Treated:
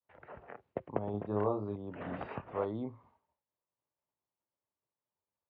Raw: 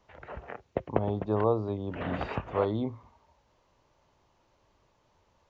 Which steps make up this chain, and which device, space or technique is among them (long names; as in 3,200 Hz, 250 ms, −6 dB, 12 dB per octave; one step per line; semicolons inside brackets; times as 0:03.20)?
high-pass filter 110 Hz 12 dB per octave
hearing-loss simulation (low-pass filter 2,400 Hz 12 dB per octave; downward expander −56 dBFS)
0:01.11–0:01.76: double-tracking delay 29 ms −3.5 dB
level −7 dB